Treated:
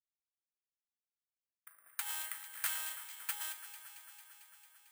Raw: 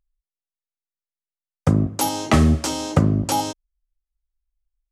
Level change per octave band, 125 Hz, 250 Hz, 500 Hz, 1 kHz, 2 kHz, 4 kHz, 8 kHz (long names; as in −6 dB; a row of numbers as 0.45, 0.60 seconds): below −40 dB, below −40 dB, below −40 dB, −26.0 dB, −11.5 dB, −16.0 dB, −12.5 dB